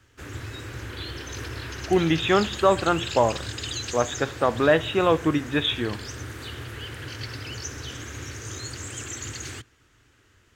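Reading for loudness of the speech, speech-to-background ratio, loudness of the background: -23.0 LUFS, 11.5 dB, -34.5 LUFS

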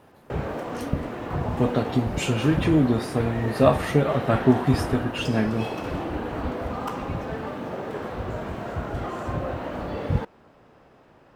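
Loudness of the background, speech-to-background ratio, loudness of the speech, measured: -30.5 LUFS, 7.0 dB, -23.5 LUFS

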